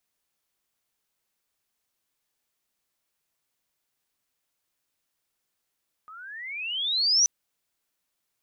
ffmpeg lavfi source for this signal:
-f lavfi -i "aevalsrc='pow(10,(-16+26*(t/1.18-1))/20)*sin(2*PI*1230*1.18/(27.5*log(2)/12)*(exp(27.5*log(2)/12*t/1.18)-1))':d=1.18:s=44100"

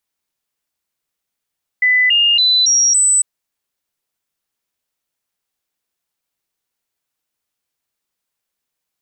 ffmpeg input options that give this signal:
-f lavfi -i "aevalsrc='0.335*clip(min(mod(t,0.28),0.28-mod(t,0.28))/0.005,0,1)*sin(2*PI*2000*pow(2,floor(t/0.28)/2)*mod(t,0.28))':d=1.4:s=44100"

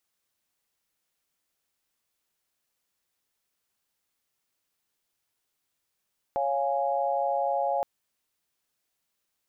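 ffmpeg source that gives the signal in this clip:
-f lavfi -i "aevalsrc='0.0376*(sin(2*PI*554.37*t)+sin(2*PI*698.46*t)+sin(2*PI*830.61*t))':d=1.47:s=44100"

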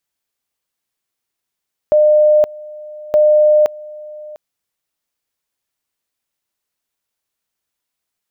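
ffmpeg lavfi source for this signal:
-f lavfi -i "aevalsrc='pow(10,(-7-22*gte(mod(t,1.22),0.52))/20)*sin(2*PI*605*t)':d=2.44:s=44100"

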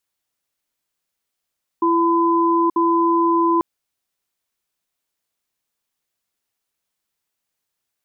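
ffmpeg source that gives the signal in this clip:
-f lavfi -i "aevalsrc='0.15*(sin(2*PI*336*t)+sin(2*PI*1010*t))*clip(min(mod(t,0.94),0.88-mod(t,0.94))/0.005,0,1)':d=1.79:s=44100"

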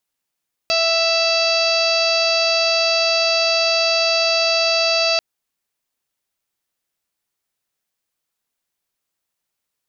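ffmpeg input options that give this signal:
-f lavfi -i "aevalsrc='0.106*sin(2*PI*661*t)+0.0422*sin(2*PI*1322*t)+0.0178*sin(2*PI*1983*t)+0.0841*sin(2*PI*2644*t)+0.0251*sin(2*PI*3305*t)+0.0531*sin(2*PI*3966*t)+0.106*sin(2*PI*4627*t)+0.0376*sin(2*PI*5288*t)+0.0211*sin(2*PI*5949*t)+0.0112*sin(2*PI*6610*t)':d=4.49:s=44100"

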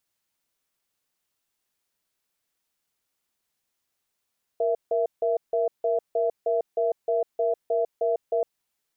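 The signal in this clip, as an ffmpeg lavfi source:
-f lavfi -i "aevalsrc='0.0668*(sin(2*PI*469*t)+sin(2*PI*666*t))*clip(min(mod(t,0.31),0.15-mod(t,0.31))/0.005,0,1)':d=3.83:s=44100"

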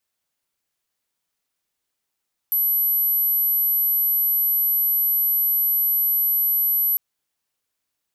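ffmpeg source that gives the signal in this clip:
-f lavfi -i "aevalsrc='0.141*sin(2*PI*11800*t)':d=4.45:s=44100"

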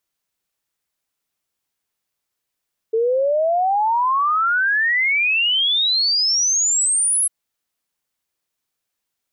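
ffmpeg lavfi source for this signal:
-f lavfi -i "aevalsrc='0.178*clip(min(t,4.35-t)/0.01,0,1)*sin(2*PI*440*4.35/log(11000/440)*(exp(log(11000/440)*t/4.35)-1))':d=4.35:s=44100"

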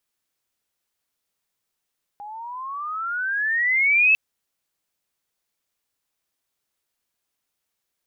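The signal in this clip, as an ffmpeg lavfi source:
-f lavfi -i "aevalsrc='pow(10,(-12.5+21.5*(t/1.95-1))/20)*sin(2*PI*809*1.95/(20.5*log(2)/12)*(exp(20.5*log(2)/12*t/1.95)-1))':d=1.95:s=44100"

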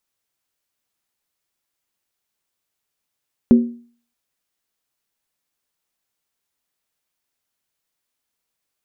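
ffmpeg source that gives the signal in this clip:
-f lavfi -i "aevalsrc='0.631*pow(10,-3*t/0.45)*sin(2*PI*237*t)+0.178*pow(10,-3*t/0.356)*sin(2*PI*377.8*t)+0.0501*pow(10,-3*t/0.308)*sin(2*PI*506.2*t)+0.0141*pow(10,-3*t/0.297)*sin(2*PI*544.2*t)+0.00398*pow(10,-3*t/0.276)*sin(2*PI*628.8*t)':d=0.63:s=44100"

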